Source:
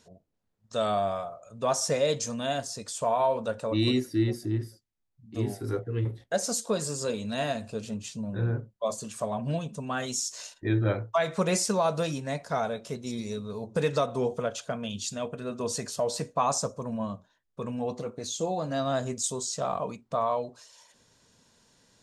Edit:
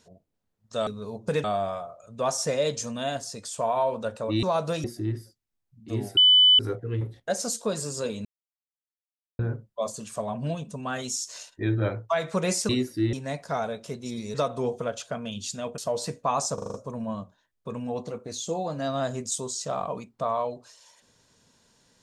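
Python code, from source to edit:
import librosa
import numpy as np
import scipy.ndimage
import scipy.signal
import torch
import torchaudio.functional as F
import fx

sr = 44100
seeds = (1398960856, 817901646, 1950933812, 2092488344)

y = fx.edit(x, sr, fx.swap(start_s=3.86, length_s=0.44, other_s=11.73, other_length_s=0.41),
    fx.insert_tone(at_s=5.63, length_s=0.42, hz=3000.0, db=-13.0),
    fx.silence(start_s=7.29, length_s=1.14),
    fx.move(start_s=13.35, length_s=0.57, to_s=0.87),
    fx.cut(start_s=15.36, length_s=0.54),
    fx.stutter(start_s=16.66, slice_s=0.04, count=6), tone=tone)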